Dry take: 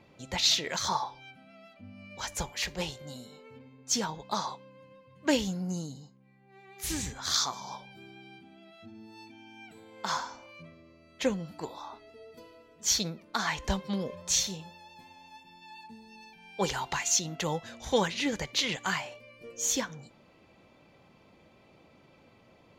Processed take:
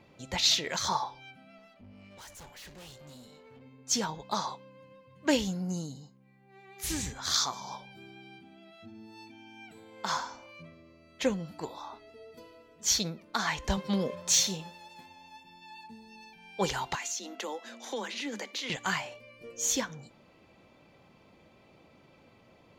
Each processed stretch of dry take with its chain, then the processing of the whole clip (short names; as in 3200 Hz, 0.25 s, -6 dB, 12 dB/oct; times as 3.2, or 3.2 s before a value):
1.58–3.62 notch 2400 Hz, Q 21 + tube stage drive 47 dB, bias 0.5
13.77–15.06 HPF 130 Hz + sample leveller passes 1
16.95–18.7 Chebyshev high-pass 200 Hz, order 10 + compressor 4:1, threshold -33 dBFS
whole clip: dry